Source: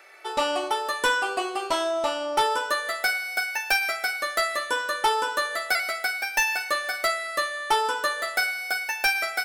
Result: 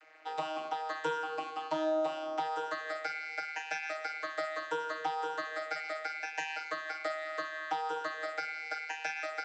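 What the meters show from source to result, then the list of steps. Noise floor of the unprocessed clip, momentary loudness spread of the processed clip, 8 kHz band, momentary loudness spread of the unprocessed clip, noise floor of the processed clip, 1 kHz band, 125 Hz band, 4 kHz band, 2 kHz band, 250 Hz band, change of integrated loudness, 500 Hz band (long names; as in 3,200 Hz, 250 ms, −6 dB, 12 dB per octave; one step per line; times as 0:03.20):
−36 dBFS, 3 LU, −20.0 dB, 4 LU, −44 dBFS, −9.5 dB, can't be measured, −16.5 dB, −13.0 dB, −5.0 dB, −11.0 dB, −7.5 dB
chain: low-shelf EQ 230 Hz −6 dB
downward compressor, threshold −26 dBFS, peak gain reduction 8 dB
channel vocoder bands 32, saw 157 Hz
level −5.5 dB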